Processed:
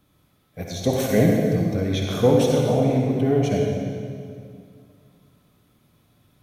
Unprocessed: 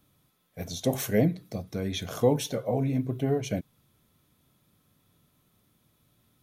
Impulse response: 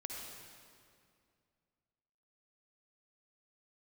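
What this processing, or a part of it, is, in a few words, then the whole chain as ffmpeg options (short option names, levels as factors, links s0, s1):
swimming-pool hall: -filter_complex "[1:a]atrim=start_sample=2205[s0];[0:a][s0]afir=irnorm=-1:irlink=0,highshelf=f=5400:g=-7,volume=2.82"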